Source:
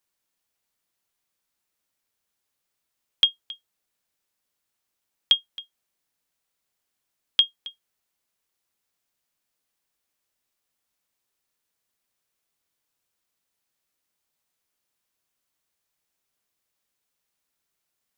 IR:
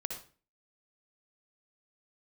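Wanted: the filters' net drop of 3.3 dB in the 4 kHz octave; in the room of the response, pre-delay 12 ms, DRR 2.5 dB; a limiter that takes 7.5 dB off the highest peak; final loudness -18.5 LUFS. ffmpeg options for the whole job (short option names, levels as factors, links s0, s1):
-filter_complex "[0:a]equalizer=f=4000:t=o:g=-4.5,alimiter=limit=0.158:level=0:latency=1,asplit=2[s0][s1];[1:a]atrim=start_sample=2205,adelay=12[s2];[s1][s2]afir=irnorm=-1:irlink=0,volume=0.668[s3];[s0][s3]amix=inputs=2:normalize=0,volume=3.76"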